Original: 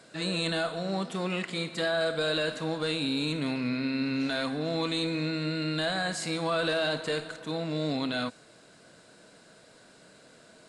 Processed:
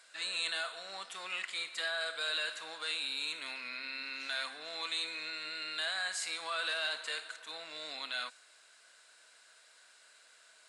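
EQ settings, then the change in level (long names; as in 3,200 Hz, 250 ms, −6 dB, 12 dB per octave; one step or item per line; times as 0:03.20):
high-pass filter 1,400 Hz 12 dB per octave
parametric band 4,500 Hz −2 dB
−1.0 dB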